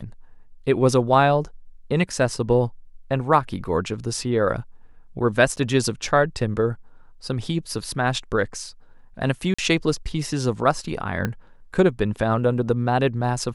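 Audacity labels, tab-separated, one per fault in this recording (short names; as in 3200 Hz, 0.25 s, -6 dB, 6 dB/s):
5.560000	5.570000	gap 9.9 ms
9.540000	9.590000	gap 45 ms
11.250000	11.250000	pop -11 dBFS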